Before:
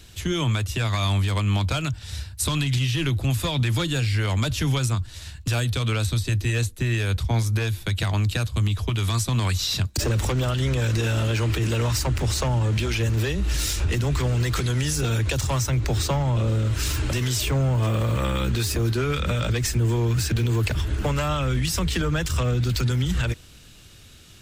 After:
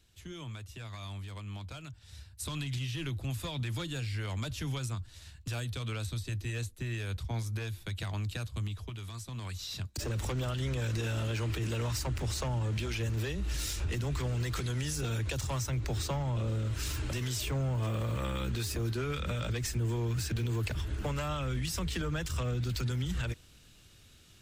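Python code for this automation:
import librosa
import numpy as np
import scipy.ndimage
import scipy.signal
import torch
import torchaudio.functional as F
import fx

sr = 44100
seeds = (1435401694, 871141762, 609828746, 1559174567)

y = fx.gain(x, sr, db=fx.line((1.92, -19.5), (2.59, -12.5), (8.6, -12.5), (9.12, -19.5), (10.3, -10.0)))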